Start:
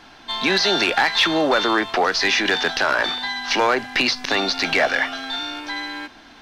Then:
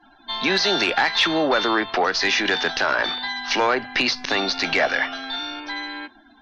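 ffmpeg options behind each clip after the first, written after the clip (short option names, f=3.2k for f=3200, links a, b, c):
-af "afftdn=nr=26:nf=-42,volume=-1.5dB"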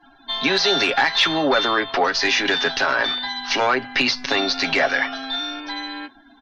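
-af "aecho=1:1:7.3:0.56"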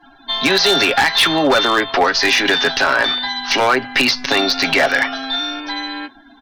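-af "aeval=exprs='0.266*(abs(mod(val(0)/0.266+3,4)-2)-1)':c=same,volume=5dB"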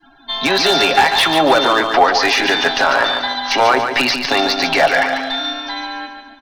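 -filter_complex "[0:a]adynamicequalizer=threshold=0.0316:dfrequency=780:dqfactor=1.5:tfrequency=780:tqfactor=1.5:attack=5:release=100:ratio=0.375:range=3.5:mode=boostabove:tftype=bell,asplit=2[a][b];[b]aecho=0:1:144|288|432|576|720:0.447|0.201|0.0905|0.0407|0.0183[c];[a][c]amix=inputs=2:normalize=0,volume=-2dB"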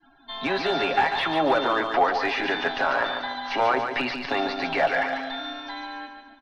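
-filter_complex "[0:a]aemphasis=mode=reproduction:type=50fm,acrossover=split=3700[a][b];[b]acompressor=threshold=-36dB:ratio=4:attack=1:release=60[c];[a][c]amix=inputs=2:normalize=0,volume=-9dB"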